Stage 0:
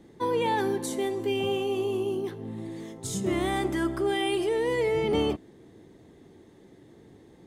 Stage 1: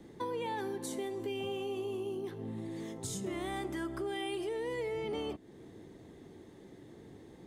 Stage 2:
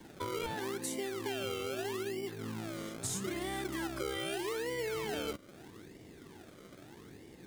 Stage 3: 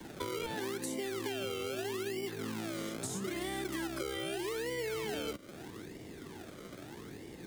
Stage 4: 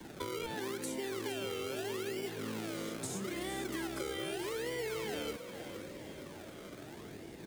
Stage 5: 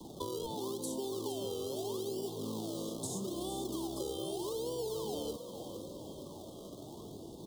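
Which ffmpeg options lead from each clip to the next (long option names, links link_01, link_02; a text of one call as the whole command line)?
ffmpeg -i in.wav -filter_complex "[0:a]acrossover=split=300|1100|6200[link_01][link_02][link_03][link_04];[link_01]alimiter=level_in=6dB:limit=-24dB:level=0:latency=1,volume=-6dB[link_05];[link_05][link_02][link_03][link_04]amix=inputs=4:normalize=0,acompressor=threshold=-38dB:ratio=3" out.wav
ffmpeg -i in.wav -filter_complex "[0:a]highshelf=frequency=5600:gain=6,acrossover=split=790[link_01][link_02];[link_01]acrusher=samples=34:mix=1:aa=0.000001:lfo=1:lforange=34:lforate=0.79[link_03];[link_03][link_02]amix=inputs=2:normalize=0" out.wav
ffmpeg -i in.wav -filter_complex "[0:a]acrossover=split=170|690|1400[link_01][link_02][link_03][link_04];[link_01]acompressor=threshold=-58dB:ratio=4[link_05];[link_02]acompressor=threshold=-43dB:ratio=4[link_06];[link_03]acompressor=threshold=-59dB:ratio=4[link_07];[link_04]acompressor=threshold=-47dB:ratio=4[link_08];[link_05][link_06][link_07][link_08]amix=inputs=4:normalize=0,volume=5.5dB" out.wav
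ffmpeg -i in.wav -filter_complex "[0:a]asplit=8[link_01][link_02][link_03][link_04][link_05][link_06][link_07][link_08];[link_02]adelay=461,afreqshift=44,volume=-11dB[link_09];[link_03]adelay=922,afreqshift=88,volume=-15.2dB[link_10];[link_04]adelay=1383,afreqshift=132,volume=-19.3dB[link_11];[link_05]adelay=1844,afreqshift=176,volume=-23.5dB[link_12];[link_06]adelay=2305,afreqshift=220,volume=-27.6dB[link_13];[link_07]adelay=2766,afreqshift=264,volume=-31.8dB[link_14];[link_08]adelay=3227,afreqshift=308,volume=-35.9dB[link_15];[link_01][link_09][link_10][link_11][link_12][link_13][link_14][link_15]amix=inputs=8:normalize=0,volume=-1.5dB" out.wav
ffmpeg -i in.wav -af "asuperstop=centerf=1900:order=12:qfactor=0.91,volume=1dB" out.wav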